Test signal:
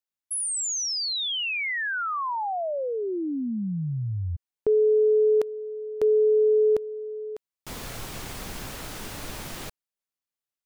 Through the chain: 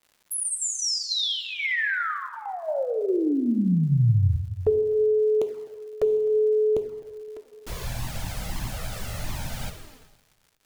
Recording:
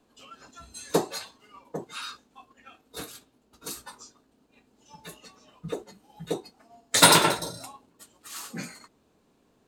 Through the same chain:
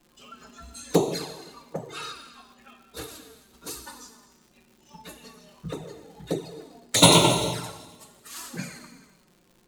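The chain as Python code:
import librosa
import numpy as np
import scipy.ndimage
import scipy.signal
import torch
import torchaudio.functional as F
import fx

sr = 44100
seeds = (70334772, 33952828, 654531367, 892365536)

p1 = fx.low_shelf(x, sr, hz=200.0, db=7.0)
p2 = fx.rev_gated(p1, sr, seeds[0], gate_ms=470, shape='falling', drr_db=5.0)
p3 = fx.env_flanger(p2, sr, rest_ms=5.9, full_db=-22.0)
p4 = fx.dmg_crackle(p3, sr, seeds[1], per_s=230.0, level_db=-50.0)
p5 = p4 + fx.echo_feedback(p4, sr, ms=257, feedback_pct=40, wet_db=-23, dry=0)
y = F.gain(torch.from_numpy(p5), 2.5).numpy()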